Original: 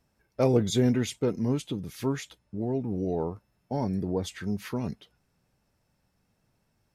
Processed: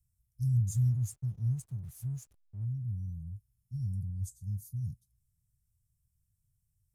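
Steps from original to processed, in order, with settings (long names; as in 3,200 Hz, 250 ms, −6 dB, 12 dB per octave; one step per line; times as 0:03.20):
dynamic equaliser 120 Hz, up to +6 dB, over −41 dBFS, Q 1.6
inverse Chebyshev band-stop filter 360–2,800 Hz, stop band 60 dB
0:00.70–0:02.65: slack as between gear wheels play −53 dBFS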